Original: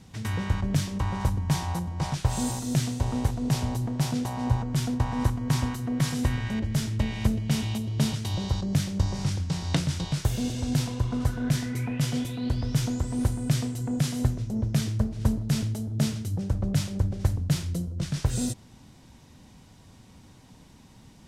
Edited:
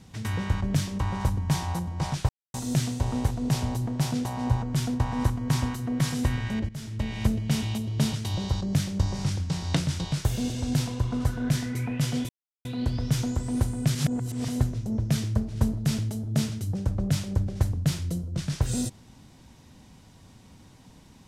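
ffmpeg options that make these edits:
-filter_complex "[0:a]asplit=7[a][b][c][d][e][f][g];[a]atrim=end=2.29,asetpts=PTS-STARTPTS,afade=t=out:st=2.286:d=0.004:c=hsin[h];[b]atrim=start=2.29:end=2.54,asetpts=PTS-STARTPTS,volume=0[i];[c]atrim=start=2.54:end=6.69,asetpts=PTS-STARTPTS,afade=t=in:d=0.004:c=hsin,afade=t=out:st=4.146:d=0.004:c=hsin:silence=0.149624[j];[d]atrim=start=6.69:end=12.29,asetpts=PTS-STARTPTS,afade=t=in:d=0.52:silence=0.149624,afade=t=out:st=5.596:d=0.004:c=hsin,apad=pad_dur=0.36[k];[e]atrim=start=12.29:end=13.592,asetpts=PTS-STARTPTS,afade=t=in:d=0.004:c=hsin[l];[f]atrim=start=13.588:end=14.122,asetpts=PTS-STARTPTS,areverse[m];[g]atrim=start=14.118[n];[h][i][j][k][l]concat=n=5:v=0:a=1[o];[o][m]acrossfade=d=0.004:c1=hsin:c2=hsin[p];[p][n]acrossfade=d=0.004:c1=hsin:c2=hsin"

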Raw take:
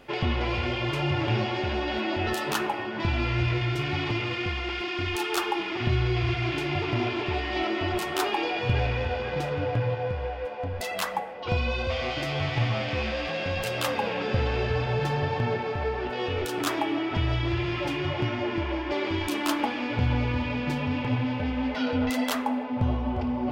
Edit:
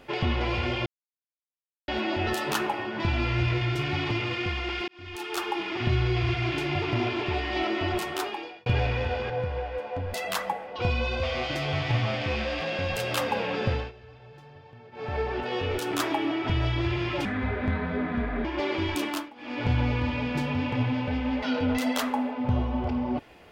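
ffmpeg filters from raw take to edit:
-filter_complex "[0:a]asplit=12[a][b][c][d][e][f][g][h][i][j][k][l];[a]atrim=end=0.86,asetpts=PTS-STARTPTS,afade=t=out:st=0.856:d=0.004:c=hsin[m];[b]atrim=start=0.86:end=1.88,asetpts=PTS-STARTPTS,volume=0[n];[c]atrim=start=1.88:end=4.88,asetpts=PTS-STARTPTS,afade=t=in:d=0.004:c=hsin,afade=t=out:st=2.996:d=0.004:c=hsin[o];[d]atrim=start=4.88:end=8.66,asetpts=PTS-STARTPTS,afade=t=in:d=1.11:c=qsin,afade=t=out:st=3.06:d=0.72[p];[e]atrim=start=8.66:end=9.302,asetpts=PTS-STARTPTS,afade=t=in:d=0.004:c=hsin[q];[f]atrim=start=9.968:end=14.59,asetpts=PTS-STARTPTS,afade=t=out:st=4.302:d=0.32:c=qsin:silence=0.0749894[r];[g]atrim=start=14.59:end=15.59,asetpts=PTS-STARTPTS,volume=-22.5dB[s];[h]atrim=start=15.59:end=17.924,asetpts=PTS-STARTPTS,afade=t=in:d=0.32:c=qsin:silence=0.0749894[t];[i]atrim=start=17.92:end=18.77,asetpts=PTS-STARTPTS,asetrate=31311,aresample=44100[u];[j]atrim=start=18.766:end=19.63,asetpts=PTS-STARTPTS,afade=t=out:st=0.584:d=0.28:silence=0.0707946[v];[k]atrim=start=19.63:end=19.68,asetpts=PTS-STARTPTS,volume=-23dB[w];[l]atrim=start=19.68,asetpts=PTS-STARTPTS,afade=t=in:d=0.28:silence=0.0707946[x];[m][n][o][p][q]concat=n=5:v=0:a=1[y];[r][s][t]concat=n=3:v=0:a=1[z];[y][z]acrossfade=d=0.004:c1=hsin:c2=hsin[aa];[aa][u]acrossfade=d=0.004:c1=hsin:c2=hsin[ab];[v][w][x]concat=n=3:v=0:a=1[ac];[ab][ac]acrossfade=d=0.004:c1=hsin:c2=hsin"

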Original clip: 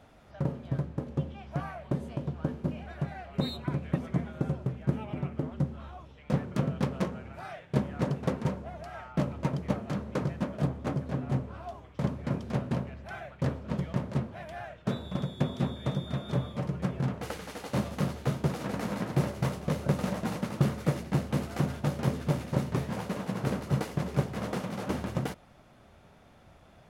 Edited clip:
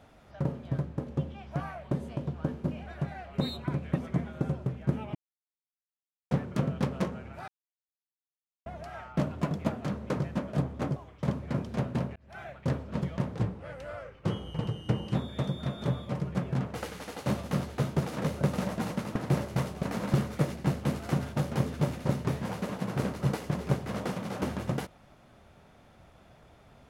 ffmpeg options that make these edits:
-filter_complex "[0:a]asplit=15[a][b][c][d][e][f][g][h][i][j][k][l][m][n][o];[a]atrim=end=5.15,asetpts=PTS-STARTPTS,afade=t=out:st=5.146:d=0.004:c=hsin[p];[b]atrim=start=5.15:end=6.31,asetpts=PTS-STARTPTS,volume=0[q];[c]atrim=start=6.31:end=7.48,asetpts=PTS-STARTPTS,afade=t=in:d=0.004:c=hsin,afade=t=out:st=1.166:d=0.004:c=hsin[r];[d]atrim=start=7.48:end=8.66,asetpts=PTS-STARTPTS,volume=0[s];[e]atrim=start=8.66:end=9.244,asetpts=PTS-STARTPTS,afade=t=in:d=0.004:c=hsin[t];[f]atrim=start=9.24:end=9.86,asetpts=PTS-STARTPTS,asetrate=48069,aresample=44100,atrim=end_sample=25084,asetpts=PTS-STARTPTS[u];[g]atrim=start=9.856:end=11.012[v];[h]atrim=start=11.718:end=12.92,asetpts=PTS-STARTPTS,afade=t=out:st=1.198:d=0.004:c=hsin[w];[i]atrim=start=12.92:end=14.114,asetpts=PTS-STARTPTS,afade=t=in:d=0.33[x];[j]atrim=start=14.11:end=15.62,asetpts=PTS-STARTPTS,asetrate=37044,aresample=44100[y];[k]atrim=start=15.616:end=18.712[z];[l]atrim=start=19.688:end=20.612[aa];[m]atrim=start=19.018:end=19.692[ab];[n]atrim=start=18.708:end=19.022[ac];[o]atrim=start=20.608[ad];[p][q][r][s][t]concat=n=5:v=0:a=1[ae];[ae][u]acrossfade=d=0.004:c1=hsin:c2=hsin[af];[af][v]acrossfade=d=0.004:c1=hsin:c2=hsin[ag];[w][x]concat=n=2:v=0:a=1[ah];[ag][ah]acrossfade=d=0.004:c1=hsin:c2=hsin[ai];[ai][y]acrossfade=d=0.004:c1=hsin:c2=hsin[aj];[aj][z]acrossfade=d=0.004:c1=hsin:c2=hsin[ak];[ak][aa]acrossfade=d=0.004:c1=hsin:c2=hsin[al];[al][ab]acrossfade=d=0.004:c1=hsin:c2=hsin[am];[am][ac]acrossfade=d=0.004:c1=hsin:c2=hsin[an];[an][ad]acrossfade=d=0.004:c1=hsin:c2=hsin"

